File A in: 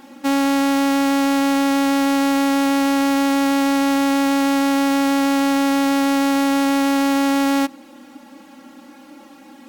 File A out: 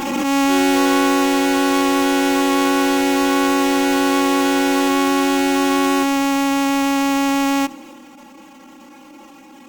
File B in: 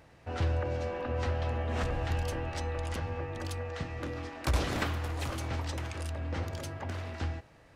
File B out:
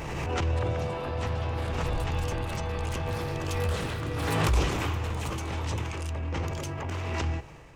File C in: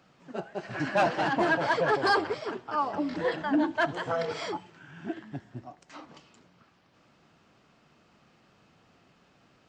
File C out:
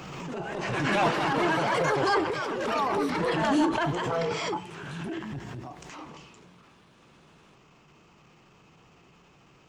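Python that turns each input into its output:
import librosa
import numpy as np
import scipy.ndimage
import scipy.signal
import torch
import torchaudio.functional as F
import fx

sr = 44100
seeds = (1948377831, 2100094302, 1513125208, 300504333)

y = fx.ripple_eq(x, sr, per_octave=0.73, db=6)
y = fx.transient(y, sr, attack_db=-12, sustain_db=4)
y = fx.rider(y, sr, range_db=4, speed_s=2.0)
y = fx.low_shelf(y, sr, hz=90.0, db=5.0)
y = fx.echo_pitch(y, sr, ms=291, semitones=5, count=2, db_per_echo=-6.0)
y = fx.pre_swell(y, sr, db_per_s=24.0)
y = y * librosa.db_to_amplitude(1.0)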